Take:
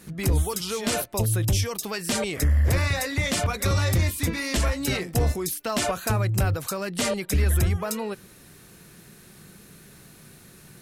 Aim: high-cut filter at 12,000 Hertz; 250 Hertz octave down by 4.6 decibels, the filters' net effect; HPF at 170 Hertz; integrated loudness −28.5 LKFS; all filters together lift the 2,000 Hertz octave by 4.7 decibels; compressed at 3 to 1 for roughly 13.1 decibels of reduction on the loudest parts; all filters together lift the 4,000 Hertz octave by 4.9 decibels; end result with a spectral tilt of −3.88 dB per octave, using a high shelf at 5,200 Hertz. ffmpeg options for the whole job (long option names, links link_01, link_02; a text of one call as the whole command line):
ffmpeg -i in.wav -af "highpass=170,lowpass=12000,equalizer=frequency=250:width_type=o:gain=-4.5,equalizer=frequency=2000:width_type=o:gain=4.5,equalizer=frequency=4000:width_type=o:gain=7,highshelf=frequency=5200:gain=-4.5,acompressor=threshold=-39dB:ratio=3,volume=9dB" out.wav